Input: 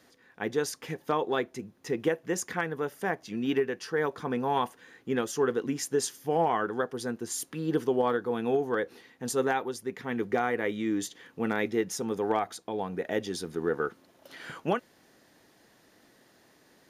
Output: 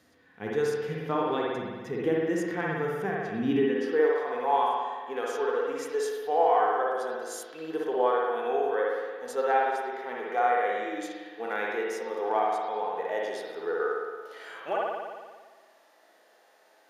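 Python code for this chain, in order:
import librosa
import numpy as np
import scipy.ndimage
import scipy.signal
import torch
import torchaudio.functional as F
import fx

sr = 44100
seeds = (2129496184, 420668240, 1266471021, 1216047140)

y = fx.rev_spring(x, sr, rt60_s=1.5, pass_ms=(56,), chirp_ms=55, drr_db=-1.5)
y = fx.filter_sweep_highpass(y, sr, from_hz=61.0, to_hz=630.0, start_s=3.31, end_s=4.25, q=1.7)
y = fx.hpss(y, sr, part='percussive', gain_db=-12)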